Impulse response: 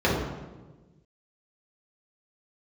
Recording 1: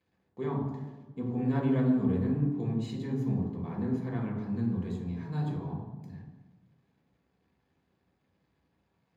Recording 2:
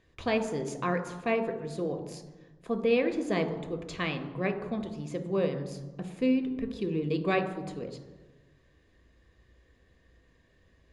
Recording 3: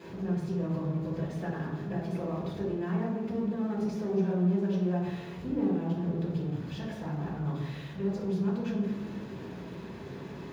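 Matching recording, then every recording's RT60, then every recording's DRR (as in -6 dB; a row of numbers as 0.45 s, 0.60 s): 3; 1.3 s, 1.3 s, 1.3 s; -3.5 dB, 5.0 dB, -8.0 dB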